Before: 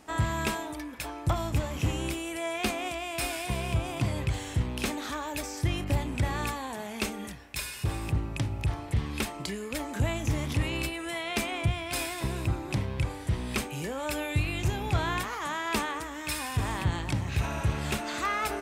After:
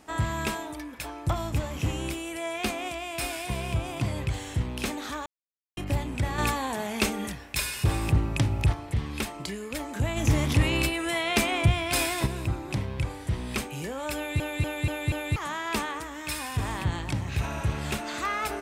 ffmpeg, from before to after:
-filter_complex "[0:a]asettb=1/sr,asplit=3[s0][s1][s2];[s0]atrim=end=6.384[s3];[s1]atrim=start=6.38:end=8.73,asetpts=PTS-STARTPTS,afade=t=in:d=0.004:c=qsin,afade=t=out:st=2.346:d=0.004:c=qsin,acontrast=46[s4];[s2]atrim=start=8.726[s5];[s3][s4]acrossfade=d=0.004:c1=hsin:c2=qsin[s6];[s6][s5]acrossfade=d=0.004:c1=qsin:c2=hsin,asplit=3[s7][s8][s9];[s7]afade=t=out:st=10.16:d=0.02[s10];[s8]acontrast=53,afade=t=in:st=10.16:d=0.02,afade=t=out:st=12.25:d=0.02[s11];[s9]afade=t=in:st=12.25:d=0.02[s12];[s10][s11][s12]amix=inputs=3:normalize=0,asplit=8[s13][s14][s15][s16][s17][s18][s19][s20];[s13]atrim=end=5.26,asetpts=PTS-STARTPTS,afade=t=out:st=5.256:d=0.004:c=hsin[s21];[s14]atrim=start=5.26:end=5.77,asetpts=PTS-STARTPTS,volume=0[s22];[s15]atrim=start=5.77:end=14.402,asetpts=PTS-STARTPTS,afade=t=in:d=0.004:c=hsin[s23];[s16]atrim=start=14.158:end=14.402[s24];[s17]atrim=start=14.158:end=14.402[s25];[s18]atrim=start=14.158:end=14.402[s26];[s19]atrim=start=14.158:end=14.402[s27];[s20]atrim=start=15.358[s28];[s21][s22][s23]concat=n=3:v=0:a=1[s29];[s29][s24]acrossfade=d=0.004:c1=hsin:c2=hsin[s30];[s30][s25]acrossfade=d=0.004:c1=hsin:c2=hsin[s31];[s31][s26]acrossfade=d=0.004:c1=hsin:c2=hsin[s32];[s32][s27]acrossfade=d=0.004:c1=hsin:c2=hsin[s33];[s33][s28]acrossfade=d=0.004:c1=hsin:c2=hsin"

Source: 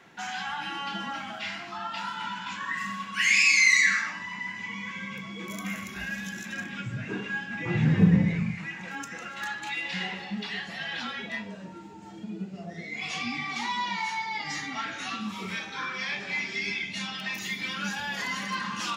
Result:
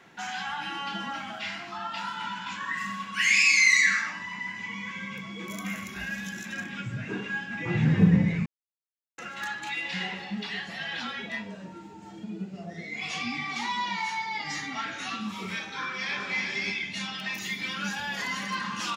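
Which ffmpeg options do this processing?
-filter_complex "[0:a]asplit=2[s0][s1];[s1]afade=t=in:st=15.66:d=0.01,afade=t=out:st=16.34:d=0.01,aecho=0:1:370|740|1110:0.595662|0.0893493|0.0134024[s2];[s0][s2]amix=inputs=2:normalize=0,asplit=3[s3][s4][s5];[s3]atrim=end=8.46,asetpts=PTS-STARTPTS,afade=t=out:st=8.456:d=0.004:c=hsin[s6];[s4]atrim=start=8.46:end=9.18,asetpts=PTS-STARTPTS,volume=0[s7];[s5]atrim=start=9.18,asetpts=PTS-STARTPTS,afade=t=in:d=0.004:c=hsin[s8];[s6][s7][s8]concat=n=3:v=0:a=1"

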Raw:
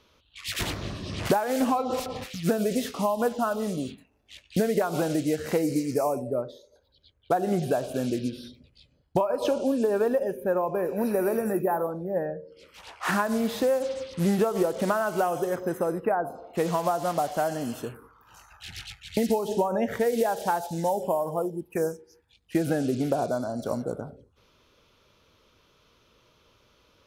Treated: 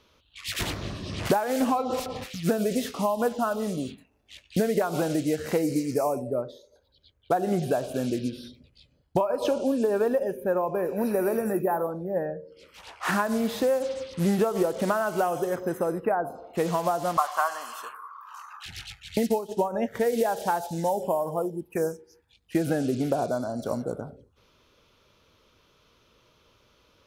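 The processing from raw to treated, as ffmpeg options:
-filter_complex "[0:a]asettb=1/sr,asplit=3[s0][s1][s2];[s0]atrim=end=17.174[s3];[s1]atrim=start=17.17:end=18.66,asetpts=PTS-STARTPTS,afade=t=in:d=0.004:c=qsin,afade=t=out:st=1.486:d=0.004:c=qsin,highpass=f=1100:t=q:w=9.9[s4];[s2]atrim=start=18.656[s5];[s3][s4]acrossfade=d=0.004:c1=hsin:c2=qsin[s6];[s6][s5]acrossfade=d=0.004:c1=qsin:c2=hsin,asplit=3[s7][s8][s9];[s7]afade=t=out:st=19.25:d=0.02[s10];[s8]agate=range=0.0224:threshold=0.0631:ratio=3:release=100:detection=peak,afade=t=in:st=19.25:d=0.02,afade=t=out:st=19.94:d=0.02[s11];[s9]afade=t=in:st=19.94:d=0.02[s12];[s10][s11][s12]amix=inputs=3:normalize=0"

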